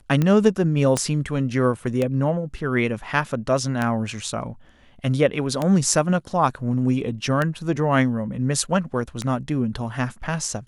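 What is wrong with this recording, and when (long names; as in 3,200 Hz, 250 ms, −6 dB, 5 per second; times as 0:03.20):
scratch tick 33 1/3 rpm −10 dBFS
0:00.97: click −9 dBFS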